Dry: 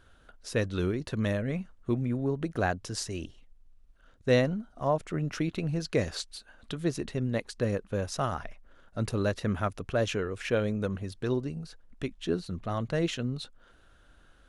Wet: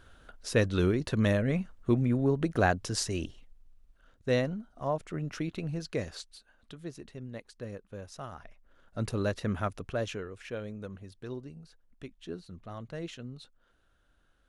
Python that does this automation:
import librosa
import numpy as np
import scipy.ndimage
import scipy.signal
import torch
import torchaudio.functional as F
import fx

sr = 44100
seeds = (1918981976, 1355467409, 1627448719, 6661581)

y = fx.gain(x, sr, db=fx.line((3.23, 3.0), (4.34, -4.0), (5.72, -4.0), (6.89, -12.0), (8.32, -12.0), (8.99, -2.0), (9.76, -2.0), (10.46, -10.5)))